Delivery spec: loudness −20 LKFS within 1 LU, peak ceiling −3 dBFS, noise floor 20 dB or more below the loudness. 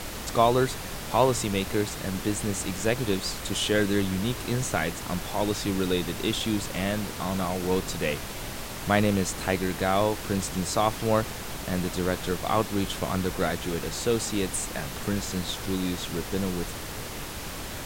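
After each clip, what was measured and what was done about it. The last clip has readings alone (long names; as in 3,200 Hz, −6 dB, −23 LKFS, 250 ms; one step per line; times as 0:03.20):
background noise floor −37 dBFS; target noise floor −48 dBFS; integrated loudness −27.5 LKFS; sample peak −7.0 dBFS; target loudness −20.0 LKFS
→ noise reduction from a noise print 11 dB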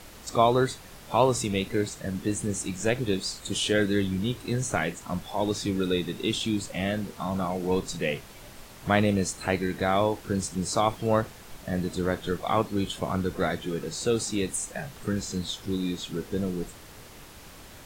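background noise floor −47 dBFS; target noise floor −48 dBFS
→ noise reduction from a noise print 6 dB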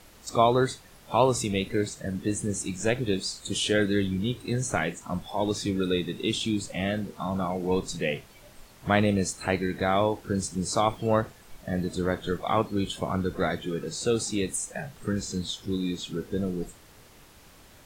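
background noise floor −53 dBFS; integrated loudness −28.0 LKFS; sample peak −7.0 dBFS; target loudness −20.0 LKFS
→ level +8 dB
brickwall limiter −3 dBFS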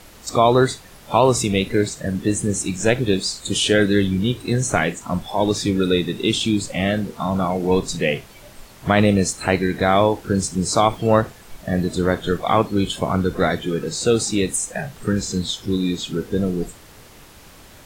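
integrated loudness −20.5 LKFS; sample peak −3.0 dBFS; background noise floor −45 dBFS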